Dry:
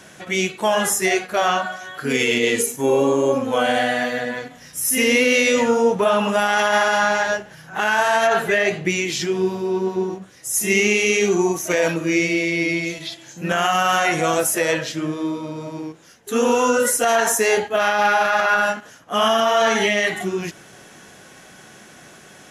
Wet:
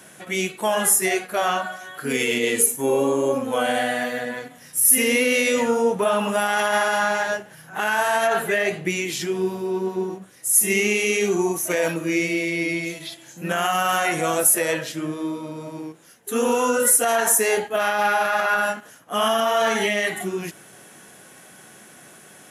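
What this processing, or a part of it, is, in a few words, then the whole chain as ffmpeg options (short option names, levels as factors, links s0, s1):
budget condenser microphone: -af "highpass=110,highshelf=f=7700:t=q:w=1.5:g=7.5,volume=0.708"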